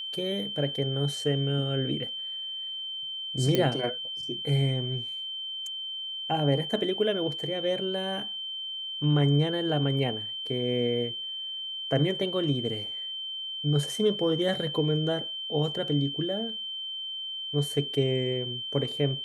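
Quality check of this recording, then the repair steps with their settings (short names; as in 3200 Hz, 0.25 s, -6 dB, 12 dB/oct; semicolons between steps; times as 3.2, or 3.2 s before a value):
tone 3100 Hz -33 dBFS
3.55 pop -11 dBFS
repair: de-click; notch 3100 Hz, Q 30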